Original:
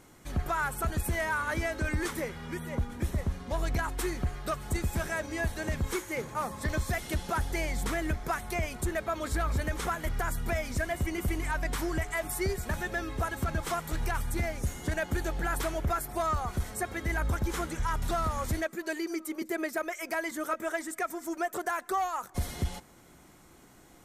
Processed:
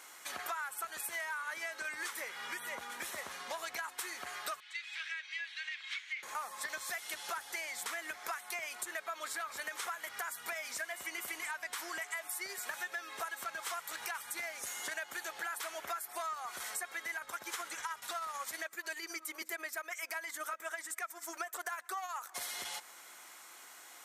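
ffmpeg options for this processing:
-filter_complex "[0:a]asettb=1/sr,asplit=3[s0][s1][s2];[s0]atrim=end=4.604[s3];[s1]atrim=start=4.6:end=6.23,asetpts=PTS-STARTPTS,afade=t=in:d=0.004:c=qsin,afade=t=out:st=1.626:d=0.004:c=qsin,asuperpass=centerf=2800:order=4:qfactor=1.4[s4];[s2]atrim=start=6.226[s5];[s3][s4]acrossfade=d=0.004:c1=hsin:c2=qsin[s6];[s6][s5]acrossfade=d=0.004:c1=qsin:c2=hsin,asettb=1/sr,asplit=3[s7][s8][s9];[s7]atrim=end=17.174[s10];[s8]atrim=start=17.17:end=22.22,asetpts=PTS-STARTPTS,afade=t=in:d=0.004:c=qsin,afade=t=out:st=5.046:d=0.004:c=qsin,tremolo=f=16:d=0.46[s11];[s9]atrim=start=22.216[s12];[s10][s11]acrossfade=d=0.004:c1=hsin:c2=qsin[s13];[s13][s12]acrossfade=d=0.004:c1=qsin:c2=hsin,highpass=1100,acompressor=threshold=0.00501:ratio=6,volume=2.51"

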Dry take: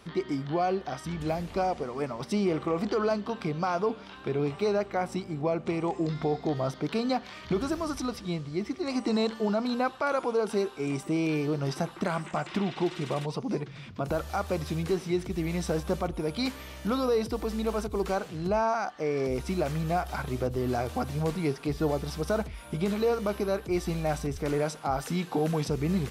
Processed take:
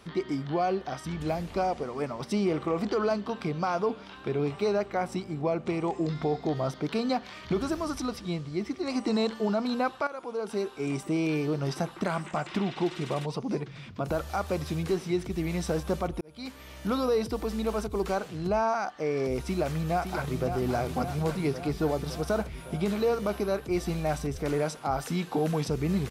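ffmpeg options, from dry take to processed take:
-filter_complex "[0:a]asplit=2[s0][s1];[s1]afade=t=in:st=19.45:d=0.01,afade=t=out:st=20.51:d=0.01,aecho=0:1:560|1120|1680|2240|2800|3360|3920|4480|5040|5600|6160:0.421697|0.295188|0.206631|0.144642|0.101249|0.0708745|0.0496122|0.0347285|0.02431|0.017017|0.0119119[s2];[s0][s2]amix=inputs=2:normalize=0,asplit=3[s3][s4][s5];[s3]atrim=end=10.07,asetpts=PTS-STARTPTS,afade=t=out:st=10.066:d=0.004:c=hsin:silence=0.188365[s6];[s4]atrim=start=10.07:end=16.21,asetpts=PTS-STARTPTS,afade=t=in:d=0.78:silence=0.188365,afade=t=out:st=6.136:d=0.004:c=hsin[s7];[s5]atrim=start=16.21,asetpts=PTS-STARTPTS,afade=t=in:d=0.7[s8];[s6][s7][s8]concat=n=3:v=0:a=1"

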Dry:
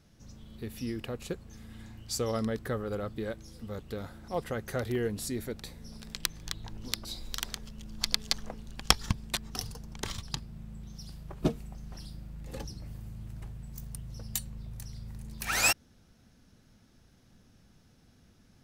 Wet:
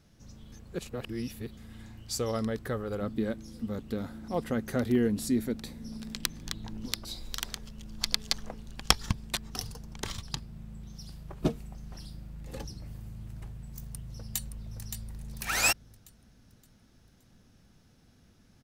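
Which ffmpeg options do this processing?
-filter_complex "[0:a]asettb=1/sr,asplit=3[s0][s1][s2];[s0]atrim=end=3.014[s3];[s1]atrim=start=3.01:end=6.86,asetpts=PTS-STARTPTS,afade=t=in:d=0.004:c=qsin,afade=t=out:st=3.846:d=0.004:c=qsin,equalizer=f=240:w=2:g=11[s4];[s2]atrim=start=6.856[s5];[s3][s4]acrossfade=d=0.004:c1=hsin:c2=qsin[s6];[s6][s5]acrossfade=d=0.004:c1=qsin:c2=hsin,asplit=2[s7][s8];[s8]afade=t=in:st=13.84:d=0.01,afade=t=out:st=14.82:d=0.01,aecho=0:1:570|1140|1710|2280|2850:0.446684|0.178673|0.0714694|0.0285877|0.0114351[s9];[s7][s9]amix=inputs=2:normalize=0,asplit=3[s10][s11][s12];[s10]atrim=end=0.522[s13];[s11]atrim=start=0.518:end=1.572,asetpts=PTS-STARTPTS,areverse[s14];[s12]atrim=start=1.568[s15];[s13][s14]acrossfade=d=0.004:c1=hsin:c2=hsin[s16];[s16][s15]acrossfade=d=0.004:c1=hsin:c2=hsin"

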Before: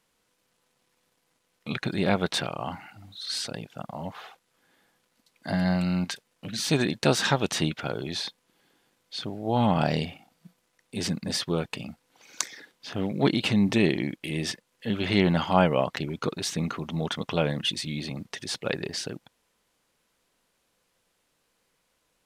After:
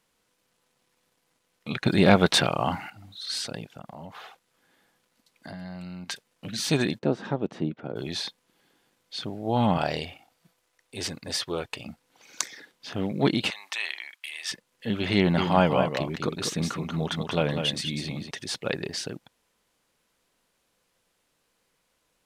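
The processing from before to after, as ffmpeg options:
-filter_complex "[0:a]asettb=1/sr,asplit=3[s0][s1][s2];[s0]atrim=end=1.864[s3];[s1]atrim=start=1.86:end=2.9,asetpts=PTS-STARTPTS,afade=t=in:d=0.004:c=qsin,afade=t=out:st=1.036:d=0.004:c=qsin,acontrast=85[s4];[s2]atrim=start=2.896[s5];[s3][s4]acrossfade=d=0.004:c1=hsin:c2=qsin[s6];[s6][s5]acrossfade=d=0.004:c1=qsin:c2=hsin,asplit=3[s7][s8][s9];[s7]afade=t=out:st=3.75:d=0.02[s10];[s8]acompressor=threshold=0.0141:ratio=6:attack=3.2:release=140:knee=1:detection=peak,afade=t=in:st=3.75:d=0.02,afade=t=out:st=6.08:d=0.02[s11];[s9]afade=t=in:st=6.08:d=0.02[s12];[s10][s11][s12]amix=inputs=3:normalize=0,asplit=3[s13][s14][s15];[s13]afade=t=out:st=6.98:d=0.02[s16];[s14]bandpass=f=290:t=q:w=0.85,afade=t=in:st=6.98:d=0.02,afade=t=out:st=7.95:d=0.02[s17];[s15]afade=t=in:st=7.95:d=0.02[s18];[s16][s17][s18]amix=inputs=3:normalize=0,asettb=1/sr,asplit=3[s19][s20][s21];[s19]atrim=end=9.774[s22];[s20]atrim=start=9.77:end=11.86,asetpts=PTS-STARTPTS,afade=t=in:d=0.004:c=qsin,afade=t=out:st=2.086:d=0.004:c=qsin,equalizer=f=190:t=o:w=0.85:g=-14[s23];[s21]atrim=start=11.856[s24];[s22][s23]acrossfade=d=0.004:c1=hsin:c2=qsin[s25];[s25][s24]acrossfade=d=0.004:c1=qsin:c2=hsin,asettb=1/sr,asplit=3[s26][s27][s28];[s26]atrim=end=13.504[s29];[s27]atrim=start=13.5:end=14.52,asetpts=PTS-STARTPTS,afade=t=in:d=0.004:c=qsin,afade=t=out:st=1.016:d=0.004:c=qsin,highpass=f=970:w=0.5412,highpass=f=970:w=1.3066[s30];[s28]atrim=start=14.516[s31];[s29][s30]acrossfade=d=0.004:c1=hsin:c2=qsin[s32];[s32][s31]acrossfade=d=0.004:c1=qsin:c2=hsin,asettb=1/sr,asplit=3[s33][s34][s35];[s33]atrim=end=15.184[s36];[s34]atrim=start=15.18:end=18.31,asetpts=PTS-STARTPTS,afade=t=in:d=0.004:c=qsin,afade=t=out:st=3.126:d=0.004:c=qsin,aecho=1:1:197:0.447,atrim=end_sample=138033[s37];[s35]atrim=start=18.306[s38];[s36][s37]acrossfade=d=0.004:c1=hsin:c2=qsin[s39];[s39][s38]acrossfade=d=0.004:c1=qsin:c2=hsin"

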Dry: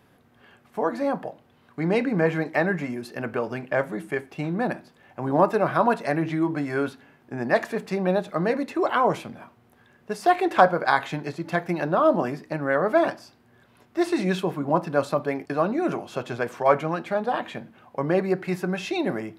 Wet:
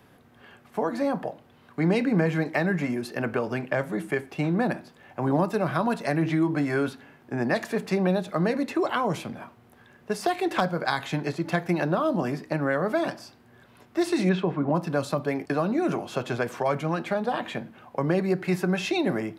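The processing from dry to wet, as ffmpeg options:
-filter_complex "[0:a]asettb=1/sr,asplit=3[s0][s1][s2];[s0]atrim=end=14.294[s3];[s1]atrim=start=14.29:end=14.75,asetpts=PTS-STARTPTS,afade=t=in:d=0.004:c=qsin,afade=t=out:st=0.456:d=0.004:c=qsin,lowpass=2700[s4];[s2]atrim=start=14.746[s5];[s3][s4]acrossfade=d=0.004:c1=hsin:c2=qsin[s6];[s6][s5]acrossfade=d=0.004:c1=qsin:c2=hsin,acrossover=split=250|3000[s7][s8][s9];[s8]acompressor=threshold=0.0447:ratio=6[s10];[s7][s10][s9]amix=inputs=3:normalize=0,volume=1.41"

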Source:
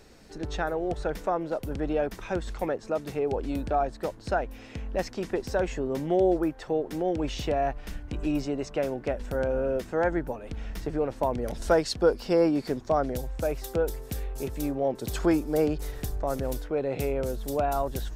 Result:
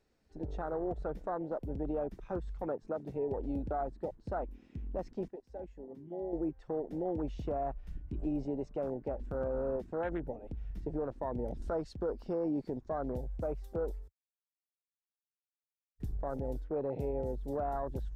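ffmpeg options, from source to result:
-filter_complex "[0:a]asplit=5[s0][s1][s2][s3][s4];[s0]atrim=end=5.282[s5];[s1]atrim=start=5.278:end=6.332,asetpts=PTS-STARTPTS,volume=0.266[s6];[s2]atrim=start=6.328:end=14.08,asetpts=PTS-STARTPTS,afade=t=out:st=7.748:d=0.004:c=hsin[s7];[s3]atrim=start=14.08:end=16,asetpts=PTS-STARTPTS,volume=0[s8];[s4]atrim=start=16,asetpts=PTS-STARTPTS,afade=t=in:d=0.004:c=hsin[s9];[s5][s6]acrossfade=d=0.004:c1=hsin:c2=hsin[s10];[s7][s8][s9]concat=n=3:v=0:a=1[s11];[s10][s11]acrossfade=d=0.004:c1=hsin:c2=hsin,afwtdn=0.0282,highshelf=f=5500:g=-6,alimiter=limit=0.0841:level=0:latency=1:release=54,volume=0.562"

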